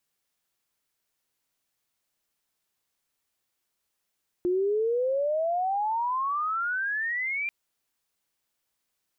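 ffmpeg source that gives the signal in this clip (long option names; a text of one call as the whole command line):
ffmpeg -f lavfi -i "aevalsrc='pow(10,(-22-5*t/3.04)/20)*sin(2*PI*350*3.04/log(2400/350)*(exp(log(2400/350)*t/3.04)-1))':duration=3.04:sample_rate=44100" out.wav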